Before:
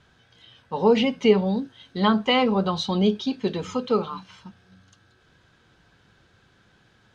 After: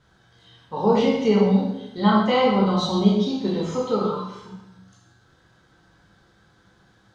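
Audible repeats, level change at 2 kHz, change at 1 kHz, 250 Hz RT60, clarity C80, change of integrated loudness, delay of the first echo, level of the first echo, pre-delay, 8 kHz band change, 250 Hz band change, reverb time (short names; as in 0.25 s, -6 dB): none, -1.5 dB, +2.5 dB, 0.95 s, 4.5 dB, +2.0 dB, none, none, 6 ms, n/a, +3.0 dB, 0.90 s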